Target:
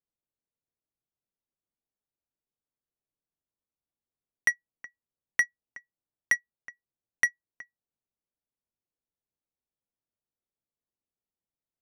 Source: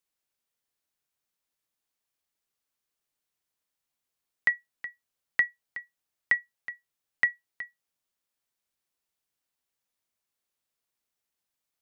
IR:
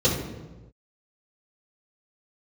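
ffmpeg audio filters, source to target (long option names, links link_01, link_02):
-af "adynamicsmooth=sensitivity=2:basefreq=660"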